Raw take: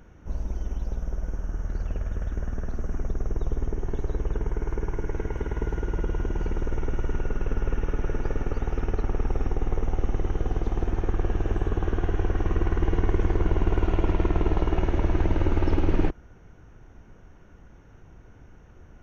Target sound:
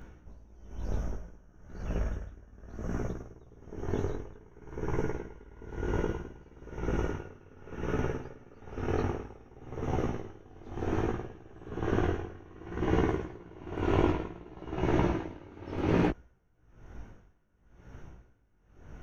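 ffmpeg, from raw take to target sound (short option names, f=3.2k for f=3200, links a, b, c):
-af "afftfilt=real='re*lt(hypot(re,im),0.631)':imag='im*lt(hypot(re,im),0.631)':win_size=1024:overlap=0.75,flanger=delay=15.5:depth=4.9:speed=0.61,aeval=exprs='val(0)*pow(10,-25*(0.5-0.5*cos(2*PI*1*n/s))/20)':c=same,volume=6.5dB"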